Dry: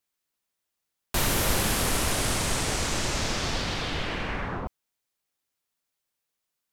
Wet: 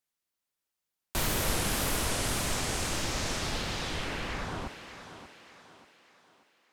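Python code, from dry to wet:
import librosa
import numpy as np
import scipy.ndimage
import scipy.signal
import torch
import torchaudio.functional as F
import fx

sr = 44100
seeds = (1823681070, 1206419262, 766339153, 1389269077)

y = fx.wow_flutter(x, sr, seeds[0], rate_hz=2.1, depth_cents=150.0)
y = fx.echo_thinned(y, sr, ms=586, feedback_pct=44, hz=180.0, wet_db=-10)
y = y * 10.0 ** (-4.5 / 20.0)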